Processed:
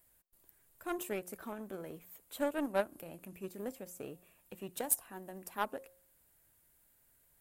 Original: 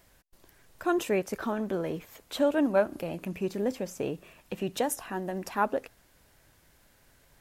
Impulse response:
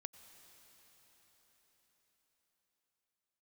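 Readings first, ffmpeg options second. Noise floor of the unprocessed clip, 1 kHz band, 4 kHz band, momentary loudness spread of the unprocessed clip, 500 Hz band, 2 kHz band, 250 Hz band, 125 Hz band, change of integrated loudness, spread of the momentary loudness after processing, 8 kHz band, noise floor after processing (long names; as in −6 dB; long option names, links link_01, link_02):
−63 dBFS, −9.0 dB, −10.0 dB, 10 LU, −10.5 dB, −8.5 dB, −11.5 dB, −13.5 dB, −9.0 dB, 16 LU, +0.5 dB, −70 dBFS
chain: -af "aexciter=amount=2.4:drive=9.3:freq=7800,bandreject=frequency=179.1:width_type=h:width=4,bandreject=frequency=358.2:width_type=h:width=4,bandreject=frequency=537.3:width_type=h:width=4,bandreject=frequency=716.4:width_type=h:width=4,bandreject=frequency=895.5:width_type=h:width=4,bandreject=frequency=1074.6:width_type=h:width=4,aeval=exprs='0.447*(cos(1*acos(clip(val(0)/0.447,-1,1)))-cos(1*PI/2))+0.0398*(cos(7*acos(clip(val(0)/0.447,-1,1)))-cos(7*PI/2))':channel_layout=same,volume=-6dB"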